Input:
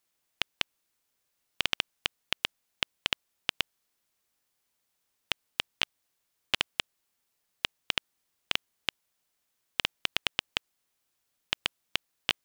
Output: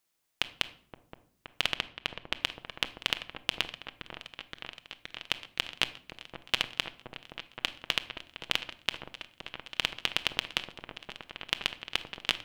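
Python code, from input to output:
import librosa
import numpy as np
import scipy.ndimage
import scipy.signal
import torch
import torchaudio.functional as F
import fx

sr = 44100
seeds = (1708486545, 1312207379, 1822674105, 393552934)

p1 = fx.high_shelf(x, sr, hz=4300.0, db=-9.5, at=(1.69, 2.41))
p2 = p1 + fx.echo_opening(p1, sr, ms=521, hz=750, octaves=1, feedback_pct=70, wet_db=-6, dry=0)
y = fx.room_shoebox(p2, sr, seeds[0], volume_m3=980.0, walls='furnished', distance_m=0.64)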